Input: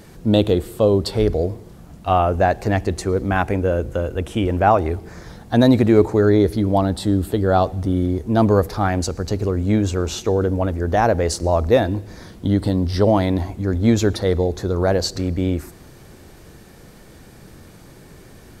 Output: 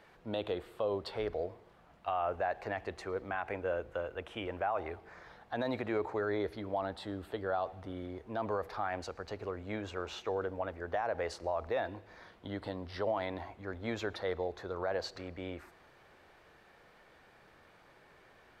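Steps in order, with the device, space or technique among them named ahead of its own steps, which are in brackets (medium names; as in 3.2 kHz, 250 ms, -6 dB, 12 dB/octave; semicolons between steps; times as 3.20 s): DJ mixer with the lows and highs turned down (three-band isolator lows -18 dB, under 540 Hz, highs -20 dB, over 3.4 kHz; peak limiter -16 dBFS, peak gain reduction 11 dB); trim -8 dB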